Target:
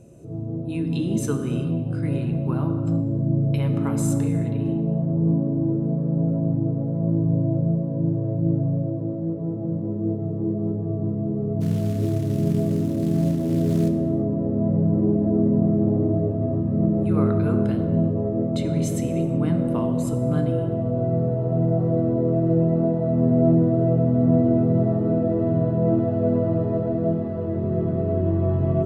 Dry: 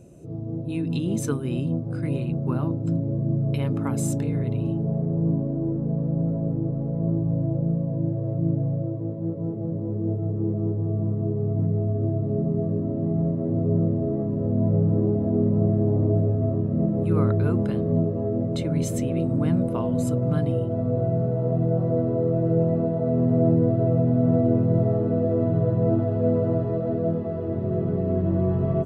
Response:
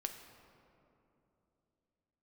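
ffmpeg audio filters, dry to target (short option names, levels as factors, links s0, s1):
-filter_complex "[0:a]asplit=3[s0][s1][s2];[s0]afade=t=out:st=11.6:d=0.02[s3];[s1]acrusher=bits=6:mode=log:mix=0:aa=0.000001,afade=t=in:st=11.6:d=0.02,afade=t=out:st=13.88:d=0.02[s4];[s2]afade=t=in:st=13.88:d=0.02[s5];[s3][s4][s5]amix=inputs=3:normalize=0[s6];[1:a]atrim=start_sample=2205,afade=t=out:st=0.3:d=0.01,atrim=end_sample=13671,asetrate=29106,aresample=44100[s7];[s6][s7]afir=irnorm=-1:irlink=0"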